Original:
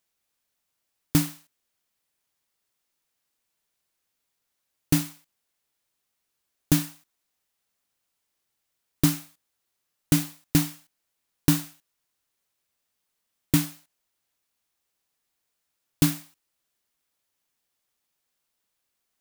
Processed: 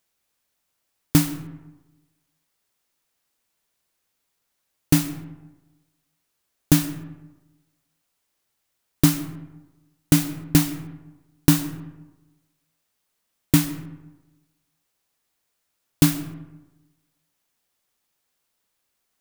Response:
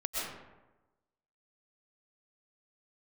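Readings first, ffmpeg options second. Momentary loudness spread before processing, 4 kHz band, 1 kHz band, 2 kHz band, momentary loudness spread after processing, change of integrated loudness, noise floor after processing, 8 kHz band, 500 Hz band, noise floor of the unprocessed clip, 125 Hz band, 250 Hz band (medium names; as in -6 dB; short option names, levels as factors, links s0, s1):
12 LU, +3.5 dB, +4.5 dB, +4.0 dB, 18 LU, +4.0 dB, -76 dBFS, +3.5 dB, +5.0 dB, -80 dBFS, +5.0 dB, +5.0 dB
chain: -filter_complex "[0:a]asplit=2[s0][s1];[1:a]atrim=start_sample=2205,lowpass=2400[s2];[s1][s2]afir=irnorm=-1:irlink=0,volume=0.158[s3];[s0][s3]amix=inputs=2:normalize=0,volume=1.5"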